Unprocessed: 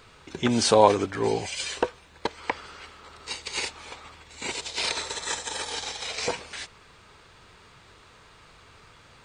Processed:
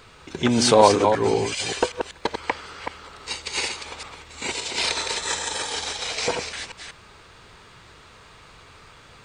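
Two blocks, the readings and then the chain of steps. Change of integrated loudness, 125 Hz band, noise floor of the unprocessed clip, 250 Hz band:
+4.0 dB, +4.0 dB, −54 dBFS, +4.0 dB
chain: delay that plays each chunk backwards 192 ms, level −6 dB
in parallel at −9 dB: soft clipping −15 dBFS, distortion −11 dB
on the sum: level +1 dB

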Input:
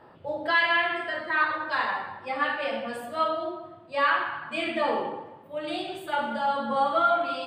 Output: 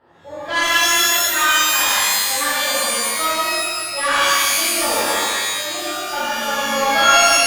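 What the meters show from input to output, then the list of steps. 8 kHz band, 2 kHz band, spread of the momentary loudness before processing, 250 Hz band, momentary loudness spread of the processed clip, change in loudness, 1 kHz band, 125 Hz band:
can't be measured, +9.0 dB, 11 LU, +4.5 dB, 9 LU, +11.0 dB, +7.0 dB, +6.5 dB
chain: harmonic generator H 2 −15 dB, 4 −31 dB, 7 −24 dB, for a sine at −11.5 dBFS
reverb with rising layers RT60 1.6 s, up +12 semitones, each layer −2 dB, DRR −9.5 dB
level −2.5 dB

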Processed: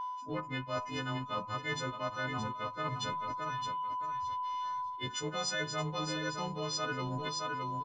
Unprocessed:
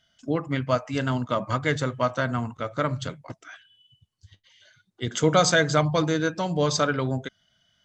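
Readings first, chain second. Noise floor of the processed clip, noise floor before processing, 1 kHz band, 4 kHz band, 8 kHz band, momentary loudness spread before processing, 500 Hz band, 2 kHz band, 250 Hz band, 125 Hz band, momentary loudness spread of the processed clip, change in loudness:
−44 dBFS, −71 dBFS, −4.5 dB, −6.5 dB, −9.5 dB, 13 LU, −14.5 dB, −9.5 dB, −13.5 dB, −13.0 dB, 3 LU, −11.0 dB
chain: every partial snapped to a pitch grid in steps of 3 semitones
high-shelf EQ 2,500 Hz +7.5 dB
in parallel at −6.5 dB: slack as between gear wheels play −22 dBFS
on the sum: steady tone 1,000 Hz −30 dBFS
Gaussian smoothing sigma 1.7 samples
repeating echo 618 ms, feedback 21%, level −11 dB
reversed playback
downward compressor 6 to 1, threshold −30 dBFS, peak gain reduction 19.5 dB
reversed playback
level −4 dB

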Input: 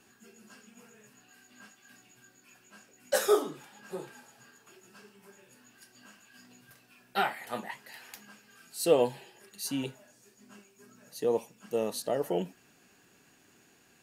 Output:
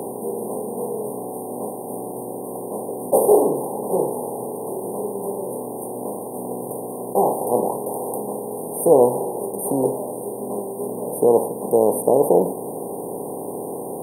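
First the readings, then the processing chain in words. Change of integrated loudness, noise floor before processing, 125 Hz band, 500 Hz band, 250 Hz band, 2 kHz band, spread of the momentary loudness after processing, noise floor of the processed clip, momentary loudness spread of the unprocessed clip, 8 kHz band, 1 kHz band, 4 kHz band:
+9.0 dB, −63 dBFS, +13.5 dB, +13.5 dB, +14.0 dB, below −35 dB, 14 LU, −31 dBFS, 21 LU, +11.5 dB, +13.5 dB, below −35 dB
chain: compressor on every frequency bin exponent 0.4
linear-phase brick-wall band-stop 1,100–8,500 Hz
level +7 dB

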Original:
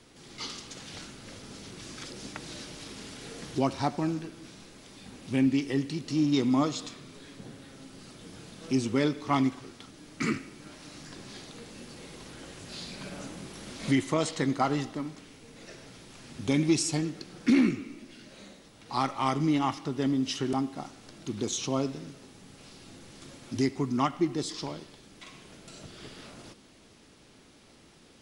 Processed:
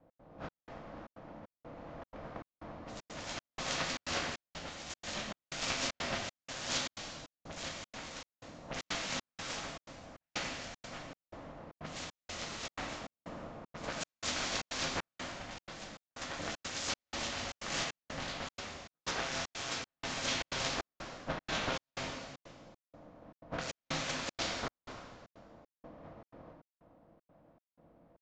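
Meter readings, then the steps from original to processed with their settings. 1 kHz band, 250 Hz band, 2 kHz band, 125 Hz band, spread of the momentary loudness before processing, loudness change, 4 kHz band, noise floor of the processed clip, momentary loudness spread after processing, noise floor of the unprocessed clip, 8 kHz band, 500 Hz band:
−7.0 dB, −18.5 dB, +0.5 dB, −13.0 dB, 22 LU, −9.5 dB, +0.5 dB, below −85 dBFS, 17 LU, −56 dBFS, −2.0 dB, −9.0 dB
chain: compressing power law on the bin magnitudes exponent 0.25
high-pass filter 45 Hz
low-pass that shuts in the quiet parts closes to 340 Hz, open at −22.5 dBFS
parametric band 410 Hz −5.5 dB 0.74 octaves
hum removal 72.42 Hz, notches 2
compressor whose output falls as the input rises −37 dBFS, ratio −1
pitch vibrato 6.2 Hz 5.3 cents
delay with pitch and tempo change per echo 175 ms, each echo +3 semitones, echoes 2, each echo −6 dB
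ring modulation 400 Hz
dense smooth reverb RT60 1.6 s, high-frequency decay 1×, pre-delay 0 ms, DRR 0.5 dB
gate pattern "x.xxx..xxx" 155 BPM −60 dB
downsampling to 16,000 Hz

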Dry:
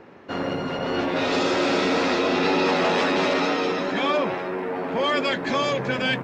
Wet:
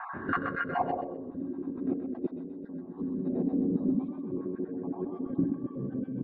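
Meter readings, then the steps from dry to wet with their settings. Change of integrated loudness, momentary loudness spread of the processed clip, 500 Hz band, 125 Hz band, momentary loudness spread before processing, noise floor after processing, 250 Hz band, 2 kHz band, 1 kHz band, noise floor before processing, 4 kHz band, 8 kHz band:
−10.0 dB, 9 LU, −14.5 dB, −4.5 dB, 7 LU, −43 dBFS, −4.5 dB, below −10 dB, −12.0 dB, −32 dBFS, below −30 dB, below −40 dB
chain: time-frequency cells dropped at random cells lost 33%
hollow resonant body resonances 1,100/1,600/3,700 Hz, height 13 dB, ringing for 40 ms
gain on a spectral selection 0:02.98–0:04.10, 270–3,700 Hz −9 dB
rotating-speaker cabinet horn 0.6 Hz
single-tap delay 502 ms −17.5 dB
auto-filter notch saw up 0.76 Hz 360–2,900 Hz
tilt shelving filter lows +6 dB, about 1,200 Hz
compressor whose output falls as the input rises −36 dBFS, ratio −1
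feedback echo with a high-pass in the loop 127 ms, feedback 51%, high-pass 420 Hz, level −5.5 dB
low-pass filter sweep 1,400 Hz → 290 Hz, 0:00.66–0:01.33

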